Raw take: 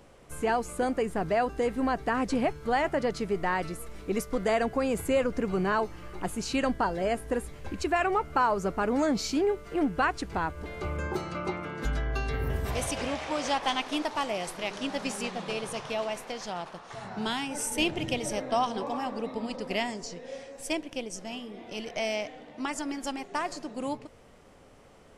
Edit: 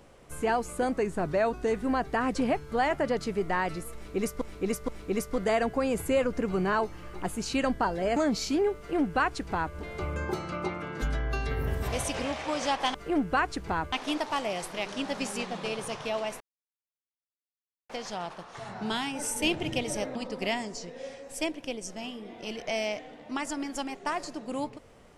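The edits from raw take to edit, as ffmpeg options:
-filter_complex "[0:a]asplit=10[a][b][c][d][e][f][g][h][i][j];[a]atrim=end=0.924[k];[b]atrim=start=0.92:end=1.77,asetpts=PTS-STARTPTS,asetrate=41013,aresample=44100,atrim=end_sample=40306,asetpts=PTS-STARTPTS[l];[c]atrim=start=1.766:end=4.352[m];[d]atrim=start=3.878:end=4.352[n];[e]atrim=start=3.878:end=7.162[o];[f]atrim=start=8.988:end=13.772[p];[g]atrim=start=9.598:end=10.582[q];[h]atrim=start=13.768:end=16.25,asetpts=PTS-STARTPTS,afade=t=out:st=2.478:d=0.004:c=hsin,apad=pad_dur=1.49[r];[i]atrim=start=16.25:end=18.512,asetpts=PTS-STARTPTS,afade=t=in:d=0.004:c=hsin[s];[j]atrim=start=19.438[t];[k][l]acrossfade=d=0.004:c1=hsin:c2=hsin[u];[u][m]acrossfade=d=0.004:c1=hsin:c2=hsin[v];[v][n]acrossfade=d=0.004:c1=hsin:c2=hsin[w];[w][o]acrossfade=d=0.004:c1=hsin:c2=hsin[x];[x][p]acrossfade=d=0.004:c1=hsin:c2=hsin[y];[y][q]acrossfade=d=0.004:c1=hsin:c2=hsin[z];[r][s]concat=n=2:v=0:a=1[aa];[z][aa]acrossfade=d=0.004:c1=hsin:c2=hsin[ab];[ab][t]acrossfade=d=0.004:c1=hsin:c2=hsin"

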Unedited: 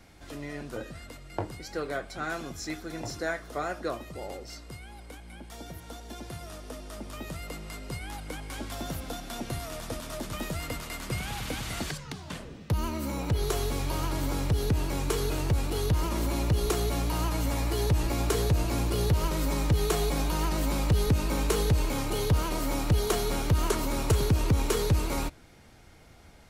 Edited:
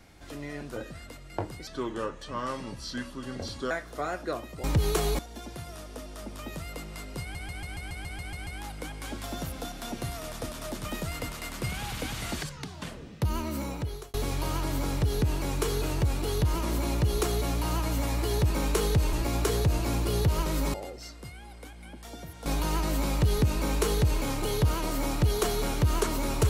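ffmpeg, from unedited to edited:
-filter_complex "[0:a]asplit=19[a][b][c][d][e][f][g][h][i][j][k][l][m][n][o][p][q][r][s];[a]atrim=end=1.674[t];[b]atrim=start=1.67:end=3.28,asetpts=PTS-STARTPTS,asetrate=34839,aresample=44100[u];[c]atrim=start=3.276:end=4.212[v];[d]atrim=start=19.588:end=20.142[w];[e]atrim=start=5.928:end=8.092[x];[f]atrim=start=7.948:end=8.092[y];[g]atrim=start=7.948:end=8.092[z];[h]atrim=start=7.948:end=8.092[aa];[i]atrim=start=7.948:end=8.092[ab];[j]atrim=start=7.948:end=8.092[ac];[k]atrim=start=7.948:end=8.092[ad];[l]atrim=start=7.948:end=8.092[ae];[m]atrim=start=7.948:end=8.092[af];[n]atrim=start=7.948:end=13.62,asetpts=PTS-STARTPTS,afade=t=out:st=5.112:d=0.56[ag];[o]atrim=start=13.62:end=17.982,asetpts=PTS-STARTPTS,afade=t=in:d=0.004:c=hsin[ah];[p]atrim=start=21.248:end=21.882[ai];[q]atrim=start=17.978:end=19.592[aj];[r]atrim=start=4.208:end=5.932[ak];[s]atrim=start=20.138[al];[t][u]acrossfade=d=0.004:c1=hsin:c2=hsin[am];[am][v]acrossfade=d=0.004:c1=hsin:c2=hsin[an];[an][w]acrossfade=d=0.004:c1=hsin:c2=hsin[ao];[ao][x]acrossfade=d=0.004:c1=hsin:c2=hsin[ap];[ap][y]acrossfade=d=0.004:c1=hsin:c2=hsin[aq];[aq][z]acrossfade=d=0.004:c1=hsin:c2=hsin[ar];[ar][aa]acrossfade=d=0.004:c1=hsin:c2=hsin[as];[as][ab]acrossfade=d=0.004:c1=hsin:c2=hsin[at];[at][ac]acrossfade=d=0.004:c1=hsin:c2=hsin[au];[au][ad]acrossfade=d=0.004:c1=hsin:c2=hsin[av];[av][ae]acrossfade=d=0.004:c1=hsin:c2=hsin[aw];[aw][af]acrossfade=d=0.004:c1=hsin:c2=hsin[ax];[ag][ah]concat=n=2:v=0:a=1[ay];[ax][ay]acrossfade=d=0.004:c1=hsin:c2=hsin[az];[az][ai]acrossfade=d=0.004:c1=hsin:c2=hsin[ba];[ba][aj]acrossfade=d=0.004:c1=hsin:c2=hsin[bb];[bb][ak]acrossfade=d=0.004:c1=hsin:c2=hsin[bc];[bc][al]acrossfade=d=0.004:c1=hsin:c2=hsin"

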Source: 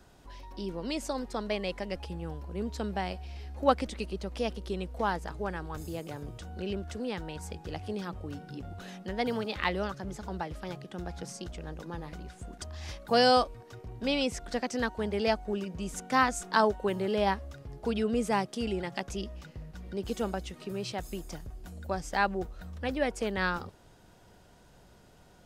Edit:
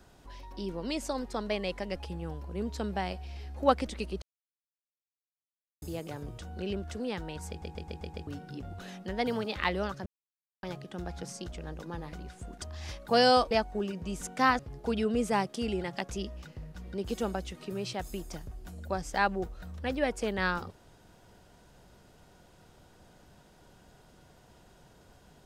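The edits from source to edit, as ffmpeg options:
-filter_complex "[0:a]asplit=13[a][b][c][d][e][f][g][h][i][j][k][l][m];[a]atrim=end=4.22,asetpts=PTS-STARTPTS,afade=t=out:st=4.216:d=0.004:c=hsin[n];[b]atrim=start=4.22:end=5.82,asetpts=PTS-STARTPTS,volume=0[o];[c]atrim=start=5.82:end=7.622,asetpts=PTS-STARTPTS,afade=t=in:d=0.004:c=hsin[p];[d]atrim=start=7.488:end=7.622[q];[e]atrim=start=7.488:end=7.622[r];[f]atrim=start=7.488:end=7.622[s];[g]atrim=start=7.488:end=7.622[t];[h]atrim=start=7.488:end=7.622[u];[i]atrim=start=8.268:end=10.06,asetpts=PTS-STARTPTS,afade=t=out:st=1.788:d=0.004:c=hsin[v];[j]atrim=start=10.06:end=10.63,asetpts=PTS-STARTPTS,volume=0[w];[k]atrim=start=10.63:end=13.512,asetpts=PTS-STARTPTS,afade=t=in:d=0.004:c=hsin[x];[l]atrim=start=15.238:end=16.322[y];[m]atrim=start=17.578[z];[n][o][p]concat=n=3:v=0:a=1[aa];[aa][q]acrossfade=d=0.004:c1=hsin:c2=hsin[ab];[ab][r]acrossfade=d=0.004:c1=hsin:c2=hsin[ac];[ac][s]acrossfade=d=0.004:c1=hsin:c2=hsin[ad];[ad][t]acrossfade=d=0.004:c1=hsin:c2=hsin[ae];[ae][u]acrossfade=d=0.004:c1=hsin:c2=hsin[af];[v][w][x]concat=n=3:v=0:a=1[ag];[af][ag]acrossfade=d=0.004:c1=hsin:c2=hsin[ah];[ah][y]acrossfade=d=0.004:c1=hsin:c2=hsin[ai];[ai][z]acrossfade=d=0.004:c1=hsin:c2=hsin"

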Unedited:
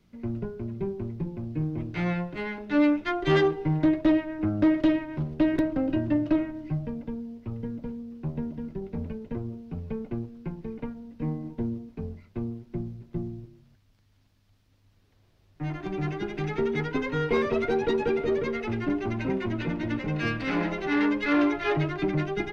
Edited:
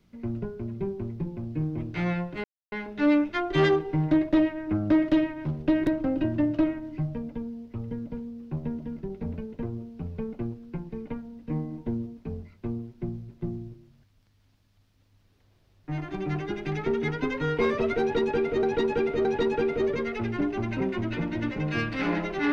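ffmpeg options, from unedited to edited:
-filter_complex "[0:a]asplit=4[a][b][c][d];[a]atrim=end=2.44,asetpts=PTS-STARTPTS,afade=t=out:st=2.436:d=0.004:c=hsin,apad=pad_dur=0.28[e];[b]atrim=start=2.44:end=18.352,asetpts=PTS-STARTPTS,afade=t=in:d=0.004:c=hsin[f];[c]atrim=start=17.728:end=18.352[g];[d]atrim=start=17.728[h];[e][f]concat=n=2:v=0:a=1[i];[i][g]acrossfade=d=0.004:c1=hsin:c2=hsin[j];[j][h]acrossfade=d=0.004:c1=hsin:c2=hsin"

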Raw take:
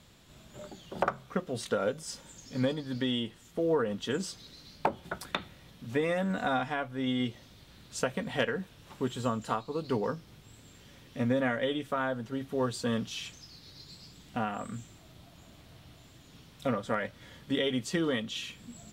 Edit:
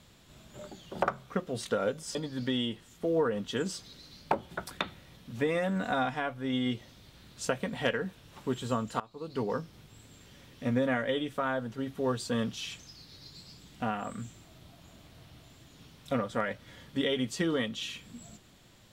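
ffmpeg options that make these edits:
-filter_complex "[0:a]asplit=3[a][b][c];[a]atrim=end=2.152[d];[b]atrim=start=2.688:end=9.54,asetpts=PTS-STARTPTS,afade=t=out:st=6.848:d=0.004:c=hsin:silence=0.11885[e];[c]atrim=start=9.54,asetpts=PTS-STARTPTS,afade=t=in:d=0.55:silence=0.11885[f];[e][f]concat=n=2:v=0:a=1[g];[d][g]acrossfade=d=0.004:c1=hsin:c2=hsin"

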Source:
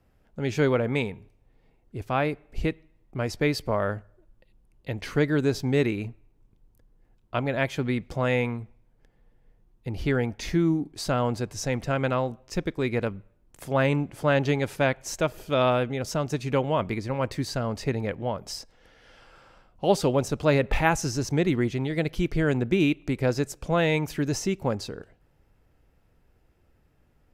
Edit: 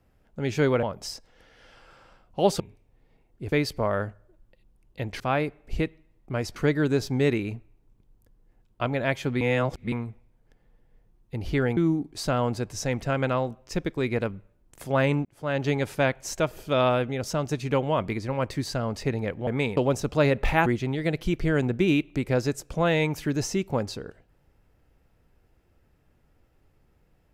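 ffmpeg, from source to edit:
-filter_complex "[0:a]asplit=13[a][b][c][d][e][f][g][h][i][j][k][l][m];[a]atrim=end=0.832[n];[b]atrim=start=18.278:end=20.052[o];[c]atrim=start=1.128:end=2.052[p];[d]atrim=start=3.408:end=5.092[q];[e]atrim=start=2.048:end=3.412[r];[f]atrim=start=5.088:end=7.942[s];[g]atrim=start=7.938:end=8.452,asetpts=PTS-STARTPTS,areverse[t];[h]atrim=start=8.448:end=10.302[u];[i]atrim=start=10.578:end=14.06,asetpts=PTS-STARTPTS,afade=t=out:st=3.478:d=0.004:c=hsin[v];[j]atrim=start=14.06:end=18.282,asetpts=PTS-STARTPTS,afade=t=in:d=0.5[w];[k]atrim=start=0.828:end=1.132[x];[l]atrim=start=20.048:end=20.942[y];[m]atrim=start=21.578[z];[n][o]acrossfade=d=0.004:c1=hsin:c2=hsin[aa];[aa][p]acrossfade=d=0.004:c1=hsin:c2=hsin[ab];[ab][q]acrossfade=d=0.004:c1=hsin:c2=hsin[ac];[ac][r]acrossfade=d=0.004:c1=hsin:c2=hsin[ad];[ad][s]acrossfade=d=0.004:c1=hsin:c2=hsin[ae];[ae][t]acrossfade=d=0.004:c1=hsin:c2=hsin[af];[af][u]acrossfade=d=0.004:c1=hsin:c2=hsin[ag];[v][w]concat=n=2:v=0:a=1[ah];[ag][ah]acrossfade=d=0.004:c1=hsin:c2=hsin[ai];[ai][x]acrossfade=d=0.004:c1=hsin:c2=hsin[aj];[aj][y]acrossfade=d=0.004:c1=hsin:c2=hsin[ak];[ak][z]acrossfade=d=0.004:c1=hsin:c2=hsin"

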